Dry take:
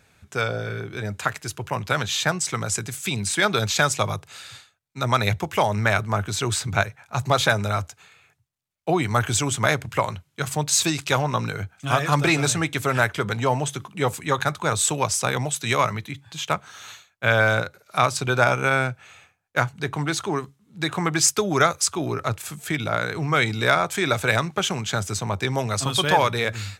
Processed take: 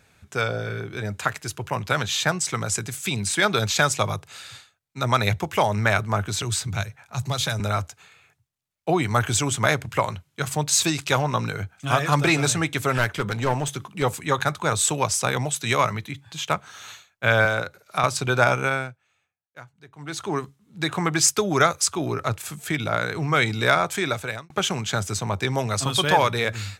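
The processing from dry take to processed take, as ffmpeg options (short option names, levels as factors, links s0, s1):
-filter_complex "[0:a]asettb=1/sr,asplit=3[s0][s1][s2];[s0]atrim=end=6.424[s3];[s1]atrim=start=6.42:end=7.6,asetpts=PTS-STARTPTS,afade=t=in:d=0.004:c=qsin,afade=t=out:st=1.176:d=0.004:c=qsin,acrossover=split=180|3000[s4][s5][s6];[s5]acompressor=threshold=0.00501:ratio=1.5:attack=3.2:release=140:knee=2.83:detection=peak[s7];[s4][s7][s6]amix=inputs=3:normalize=0[s8];[s2]atrim=start=7.596[s9];[s3][s8]acrossfade=d=0.004:c1=hsin:c2=qsin[s10];[s10][s9]acrossfade=d=0.004:c1=qsin:c2=hsin,asettb=1/sr,asplit=3[s11][s12][s13];[s11]atrim=end=12.984[s14];[s12]atrim=start=12.98:end=14.03,asetpts=PTS-STARTPTS,afade=t=in:d=0.004:c=qsin,afade=t=out:st=1.046:d=0.004:c=qsin,aeval=exprs='clip(val(0),-1,0.0596)':c=same[s15];[s13]atrim=start=14.026[s16];[s14][s15]acrossfade=d=0.004:c1=hsin:c2=qsin[s17];[s17][s16]acrossfade=d=0.004:c1=qsin:c2=hsin,asettb=1/sr,asplit=3[s18][s19][s20];[s18]atrim=end=17.454[s21];[s19]atrim=start=17.45:end=18.04,asetpts=PTS-STARTPTS,afade=t=in:d=0.004:c=qsin,afade=t=out:st=0.586:d=0.004:c=qsin,acrossover=split=270|2100[s22][s23][s24];[s22]acompressor=threshold=0.0251:ratio=4[s25];[s23]acompressor=threshold=0.1:ratio=4[s26];[s24]acompressor=threshold=0.0251:ratio=4[s27];[s25][s26][s27]amix=inputs=3:normalize=0[s28];[s20]atrim=start=18.036[s29];[s21][s28]acrossfade=d=0.004:c1=hsin:c2=qsin[s30];[s30][s29]acrossfade=d=0.004:c1=qsin:c2=hsin,asplit=4[s31][s32][s33][s34];[s31]atrim=end=18.99,asetpts=PTS-STARTPTS,afade=t=out:st=18.57:d=0.42:silence=0.0841395[s35];[s32]atrim=start=18.99:end=19.96,asetpts=PTS-STARTPTS,volume=0.0841[s36];[s33]atrim=start=19.96:end=24.5,asetpts=PTS-STARTPTS,afade=t=in:d=0.42:silence=0.0841395,afade=t=out:st=3.95:d=0.59[s37];[s34]atrim=start=24.5,asetpts=PTS-STARTPTS,afade=t=in:d=0.004:c=hsin[s38];[s35][s36][s37][s38]concat=n=4:v=0:a=1"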